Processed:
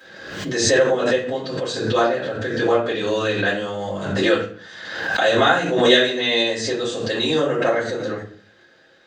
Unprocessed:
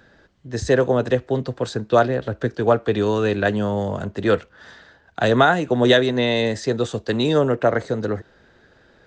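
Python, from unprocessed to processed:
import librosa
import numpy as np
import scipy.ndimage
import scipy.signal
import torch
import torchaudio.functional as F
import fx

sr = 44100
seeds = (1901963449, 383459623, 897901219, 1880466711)

y = scipy.signal.sosfilt(scipy.signal.butter(2, 170.0, 'highpass', fs=sr, output='sos'), x)
y = fx.tilt_shelf(y, sr, db=-5.0, hz=1400.0)
y = fx.hum_notches(y, sr, base_hz=60, count=8)
y = fx.room_shoebox(y, sr, seeds[0], volume_m3=35.0, walls='mixed', distance_m=2.2)
y = fx.pre_swell(y, sr, db_per_s=46.0)
y = y * librosa.db_to_amplitude(-10.5)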